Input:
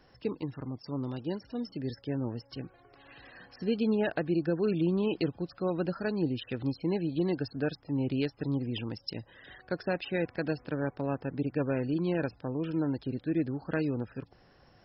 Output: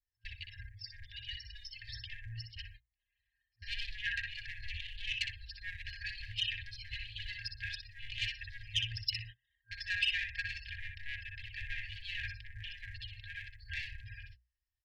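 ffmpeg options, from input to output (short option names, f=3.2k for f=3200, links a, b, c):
-filter_complex "[0:a]tiltshelf=f=970:g=3.5,aecho=1:1:3.8:0.71,asplit=2[a][b];[b]adelay=61,lowpass=f=3.7k:p=1,volume=-4dB,asplit=2[c][d];[d]adelay=61,lowpass=f=3.7k:p=1,volume=0.2,asplit=2[e][f];[f]adelay=61,lowpass=f=3.7k:p=1,volume=0.2[g];[a][c][e][g]amix=inputs=4:normalize=0,agate=range=-38dB:threshold=-41dB:ratio=16:detection=peak,adynamicequalizer=threshold=0.00112:dfrequency=2900:dqfactor=3.2:tfrequency=2900:tqfactor=3.2:attack=5:release=100:ratio=0.375:range=3:mode=boostabove:tftype=bell,asplit=2[h][i];[i]asoftclip=type=hard:threshold=-23.5dB,volume=-11dB[j];[h][j]amix=inputs=2:normalize=0,bandreject=f=60:t=h:w=6,bandreject=f=120:t=h:w=6,bandreject=f=180:t=h:w=6,bandreject=f=240:t=h:w=6,bandreject=f=300:t=h:w=6,asoftclip=type=tanh:threshold=-22dB,afftfilt=real='re*(1-between(b*sr/4096,110,1600))':imag='im*(1-between(b*sr/4096,110,1600))':win_size=4096:overlap=0.75,volume=4.5dB"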